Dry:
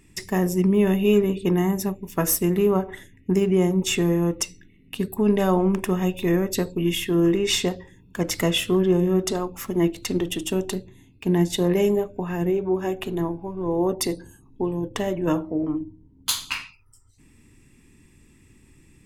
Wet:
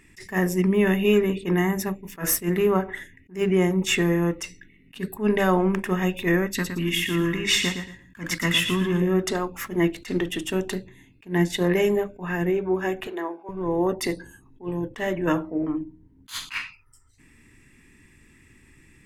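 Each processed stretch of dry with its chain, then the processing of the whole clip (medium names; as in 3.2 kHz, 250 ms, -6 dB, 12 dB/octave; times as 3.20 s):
6.47–9.02 s: high-order bell 540 Hz -10 dB 1.3 oct + feedback delay 114 ms, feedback 24%, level -8 dB
13.07–13.49 s: high-pass 360 Hz 24 dB/octave + treble shelf 6.8 kHz -10.5 dB
whole clip: peaking EQ 1.8 kHz +10.5 dB 0.98 oct; hum notches 50/100/150/200 Hz; attacks held to a fixed rise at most 250 dB/s; trim -1 dB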